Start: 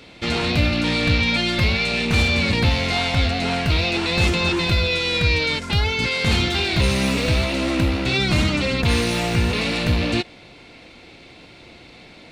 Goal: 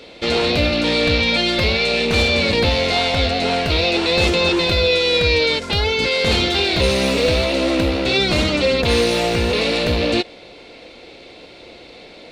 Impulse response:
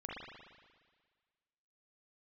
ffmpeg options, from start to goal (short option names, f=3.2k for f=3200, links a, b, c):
-af "equalizer=f=125:t=o:w=1:g=-6,equalizer=f=500:t=o:w=1:g=10,equalizer=f=4k:t=o:w=1:g=5"